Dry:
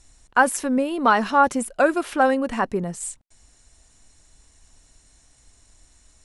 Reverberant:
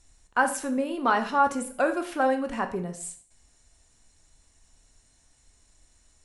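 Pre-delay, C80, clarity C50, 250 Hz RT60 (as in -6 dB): 6 ms, 15.5 dB, 11.5 dB, 0.45 s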